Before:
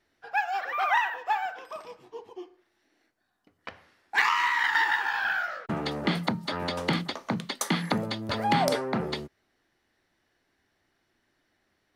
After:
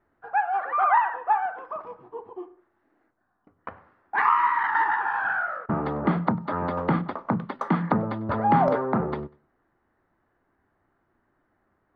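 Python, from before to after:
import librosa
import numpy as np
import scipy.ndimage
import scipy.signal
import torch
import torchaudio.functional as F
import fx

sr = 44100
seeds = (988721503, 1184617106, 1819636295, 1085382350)

p1 = fx.lowpass_res(x, sr, hz=1200.0, q=2.1)
p2 = fx.low_shelf(p1, sr, hz=380.0, db=5.5)
y = p2 + fx.echo_feedback(p2, sr, ms=97, feedback_pct=31, wet_db=-23.5, dry=0)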